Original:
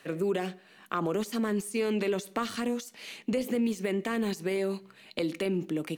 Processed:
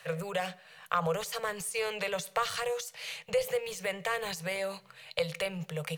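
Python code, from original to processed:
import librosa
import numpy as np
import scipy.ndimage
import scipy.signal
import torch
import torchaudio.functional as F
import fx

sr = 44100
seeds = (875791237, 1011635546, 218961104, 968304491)

y = scipy.signal.sosfilt(scipy.signal.ellip(3, 1.0, 50, [160.0, 490.0], 'bandstop', fs=sr, output='sos'), x)
y = y * 10.0 ** (3.5 / 20.0)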